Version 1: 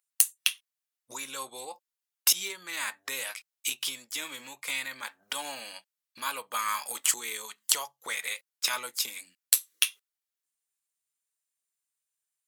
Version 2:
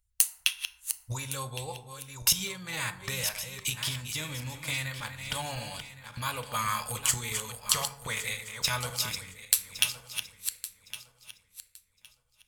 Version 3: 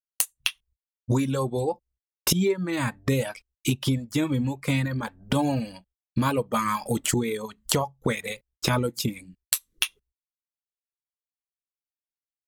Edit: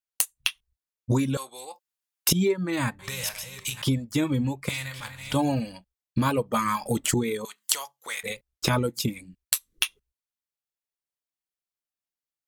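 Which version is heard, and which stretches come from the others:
3
1.37–2.29 from 1
2.99–3.82 from 2
4.69–5.34 from 2
7.45–8.23 from 1

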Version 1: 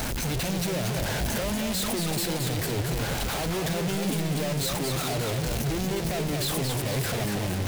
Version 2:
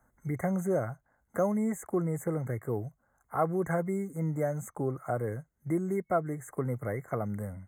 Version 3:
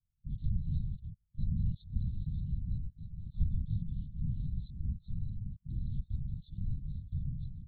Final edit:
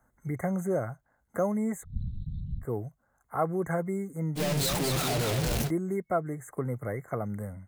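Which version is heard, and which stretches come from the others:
2
1.83–2.63 from 3, crossfade 0.06 s
4.38–5.68 from 1, crossfade 0.06 s

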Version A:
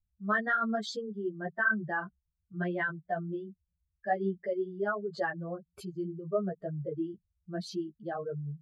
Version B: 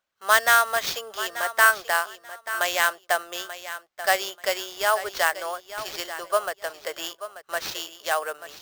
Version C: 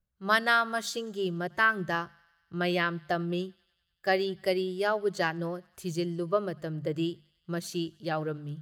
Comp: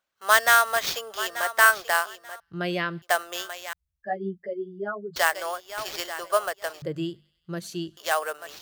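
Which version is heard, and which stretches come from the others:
B
2.4–3.02 from C
3.73–5.16 from A
6.82–7.97 from C

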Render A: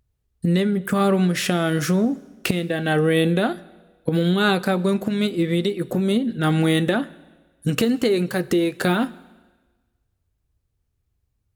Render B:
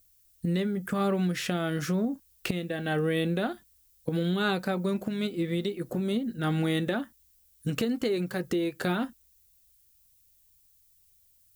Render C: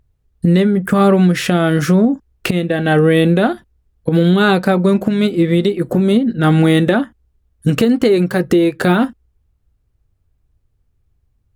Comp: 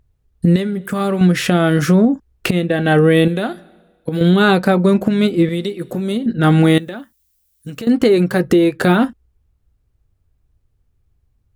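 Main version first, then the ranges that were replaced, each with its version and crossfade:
C
0.56–1.21 from A
3.28–4.21 from A
5.49–6.26 from A
6.78–7.87 from B

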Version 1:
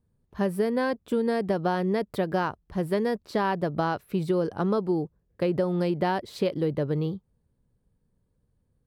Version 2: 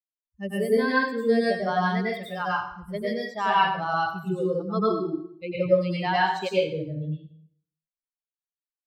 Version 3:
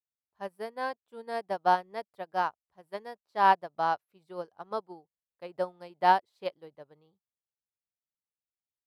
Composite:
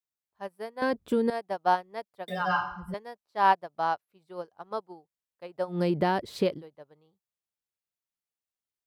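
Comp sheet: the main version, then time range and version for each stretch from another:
3
0.82–1.3 from 1
2.28–2.94 from 2
5.75–6.55 from 1, crossfade 0.16 s

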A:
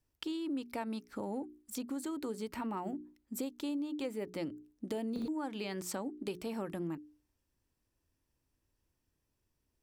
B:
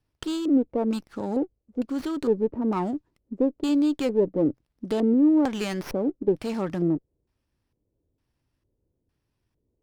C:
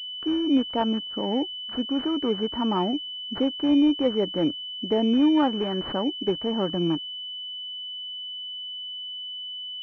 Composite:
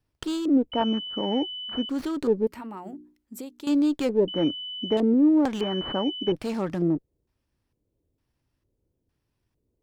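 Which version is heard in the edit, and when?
B
0.72–1.89 from C
2.47–3.67 from A
4.28–4.97 from C
5.61–6.32 from C

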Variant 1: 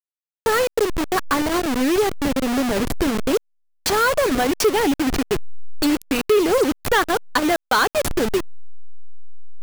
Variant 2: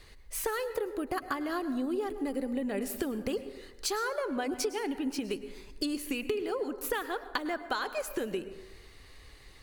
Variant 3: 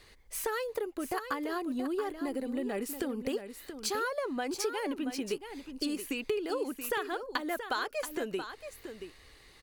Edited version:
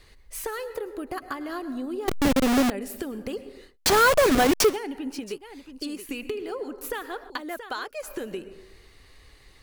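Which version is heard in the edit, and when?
2
2.08–2.7 from 1
3.7–4.7 from 1, crossfade 0.16 s
5.24–6.09 from 3
7.3–8.03 from 3

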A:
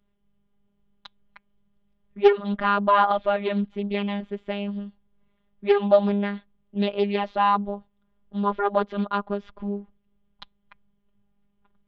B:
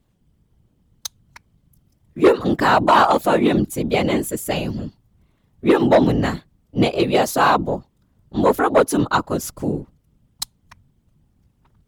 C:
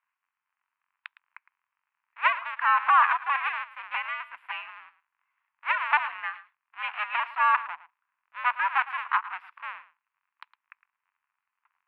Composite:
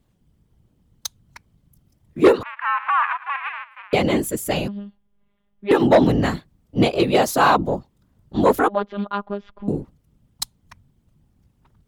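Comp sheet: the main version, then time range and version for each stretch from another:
B
2.43–3.93 from C
4.68–5.71 from A
8.68–9.68 from A

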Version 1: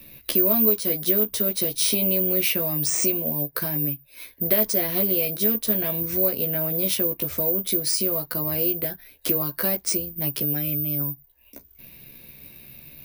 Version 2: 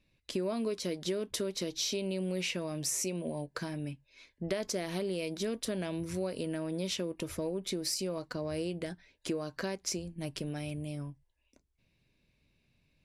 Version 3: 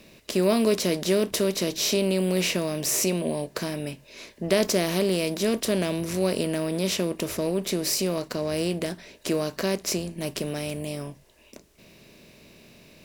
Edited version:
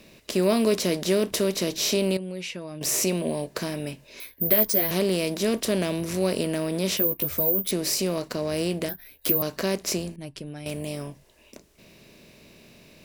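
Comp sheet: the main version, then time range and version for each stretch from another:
3
2.17–2.81 from 2
4.2–4.91 from 1
6.97–7.71 from 1
8.89–9.42 from 1
10.16–10.66 from 2

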